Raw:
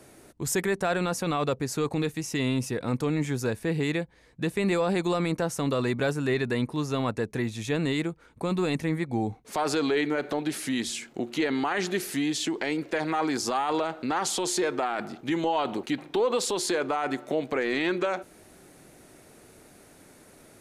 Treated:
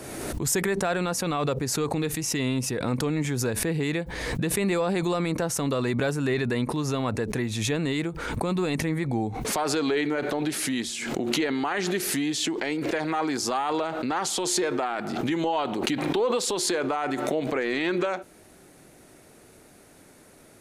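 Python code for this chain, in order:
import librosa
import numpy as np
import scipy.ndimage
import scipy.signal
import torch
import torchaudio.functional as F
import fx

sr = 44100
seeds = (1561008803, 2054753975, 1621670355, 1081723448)

y = fx.pre_swell(x, sr, db_per_s=32.0)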